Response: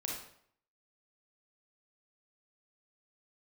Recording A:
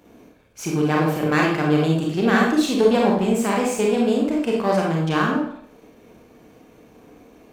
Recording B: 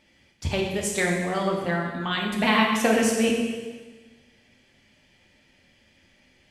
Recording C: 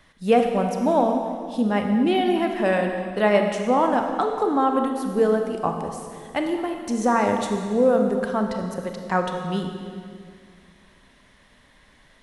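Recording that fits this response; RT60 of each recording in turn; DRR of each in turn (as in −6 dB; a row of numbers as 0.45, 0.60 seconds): A; 0.65, 1.3, 2.1 seconds; −2.0, −1.5, 3.5 decibels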